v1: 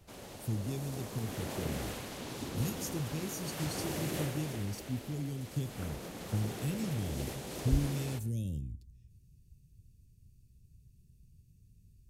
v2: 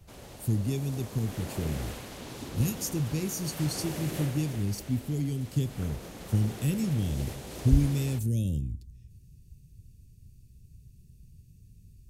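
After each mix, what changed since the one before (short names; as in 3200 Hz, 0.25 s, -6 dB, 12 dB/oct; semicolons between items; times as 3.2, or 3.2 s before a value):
speech +7.5 dB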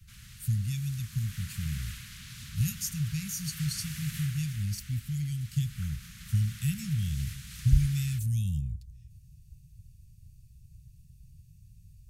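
master: add inverse Chebyshev band-stop 350–720 Hz, stop band 60 dB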